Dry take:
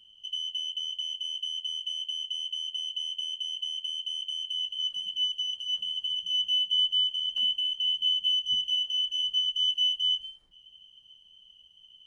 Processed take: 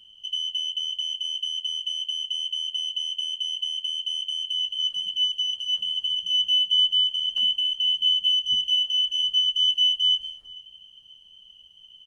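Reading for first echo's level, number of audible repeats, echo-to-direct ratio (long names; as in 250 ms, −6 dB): −21.5 dB, 1, −21.5 dB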